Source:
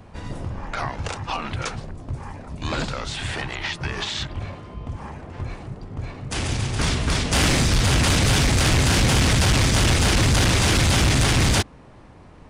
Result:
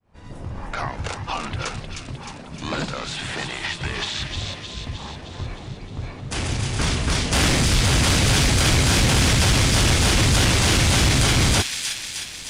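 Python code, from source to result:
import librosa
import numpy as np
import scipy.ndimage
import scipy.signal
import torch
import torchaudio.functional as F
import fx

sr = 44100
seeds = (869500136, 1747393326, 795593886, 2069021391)

y = fx.fade_in_head(x, sr, length_s=0.6)
y = fx.low_shelf_res(y, sr, hz=120.0, db=-6.5, q=1.5, at=(2.08, 3.64))
y = fx.echo_wet_highpass(y, sr, ms=309, feedback_pct=64, hz=2400.0, wet_db=-3.5)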